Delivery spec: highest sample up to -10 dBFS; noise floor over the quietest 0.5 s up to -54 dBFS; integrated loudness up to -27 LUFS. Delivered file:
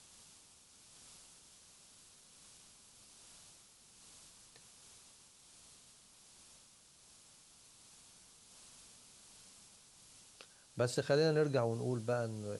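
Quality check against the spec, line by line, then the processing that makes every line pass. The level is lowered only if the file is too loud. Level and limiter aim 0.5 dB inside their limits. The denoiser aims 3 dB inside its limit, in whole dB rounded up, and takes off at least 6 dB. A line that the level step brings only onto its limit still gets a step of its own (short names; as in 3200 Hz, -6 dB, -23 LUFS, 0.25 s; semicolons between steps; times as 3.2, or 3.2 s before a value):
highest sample -19.5 dBFS: OK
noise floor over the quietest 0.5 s -63 dBFS: OK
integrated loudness -34.5 LUFS: OK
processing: none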